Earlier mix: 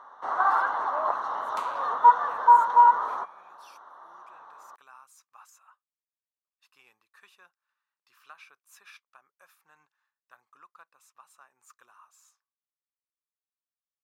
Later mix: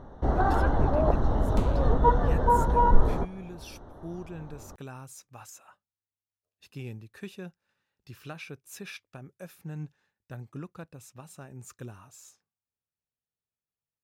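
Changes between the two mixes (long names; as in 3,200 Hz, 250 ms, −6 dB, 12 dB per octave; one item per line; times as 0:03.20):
speech +10.5 dB
master: remove high-pass with resonance 1,100 Hz, resonance Q 4.4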